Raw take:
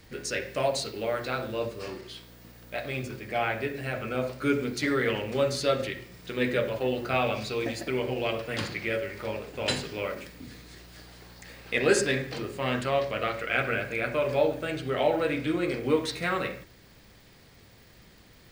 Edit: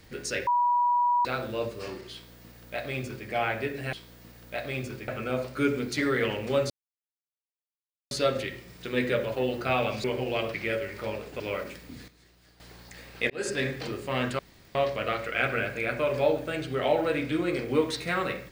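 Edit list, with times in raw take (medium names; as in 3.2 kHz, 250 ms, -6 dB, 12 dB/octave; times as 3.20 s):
0.47–1.25 s: bleep 970 Hz -20.5 dBFS
2.13–3.28 s: copy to 3.93 s
5.55 s: insert silence 1.41 s
7.48–7.94 s: delete
8.44–8.75 s: delete
9.61–9.91 s: delete
10.59–11.11 s: gain -11.5 dB
11.81–12.19 s: fade in
12.90 s: insert room tone 0.36 s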